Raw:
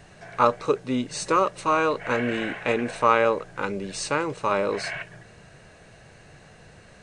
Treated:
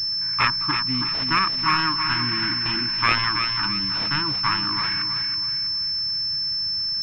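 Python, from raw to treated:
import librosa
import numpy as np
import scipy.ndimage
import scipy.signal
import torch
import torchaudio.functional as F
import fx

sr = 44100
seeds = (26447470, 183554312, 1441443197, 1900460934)

p1 = fx.self_delay(x, sr, depth_ms=0.46)
p2 = scipy.signal.sosfilt(scipy.signal.ellip(3, 1.0, 40, [310.0, 950.0], 'bandstop', fs=sr, output='sos'), p1)
p3 = fx.peak_eq(p2, sr, hz=240.0, db=-8.5, octaves=0.38)
p4 = p3 + fx.echo_feedback(p3, sr, ms=324, feedback_pct=39, wet_db=-7.0, dry=0)
p5 = fx.pwm(p4, sr, carrier_hz=5300.0)
y = p5 * librosa.db_to_amplitude(4.5)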